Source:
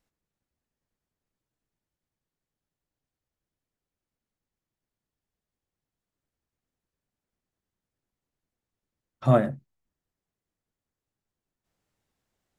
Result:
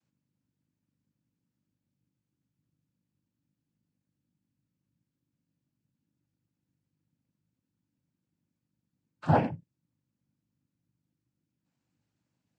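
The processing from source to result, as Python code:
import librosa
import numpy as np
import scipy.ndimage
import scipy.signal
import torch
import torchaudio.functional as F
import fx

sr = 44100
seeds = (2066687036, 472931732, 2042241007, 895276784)

y = fx.add_hum(x, sr, base_hz=50, snr_db=34)
y = fx.noise_vocoder(y, sr, seeds[0], bands=8)
y = y * 10.0 ** (-4.0 / 20.0)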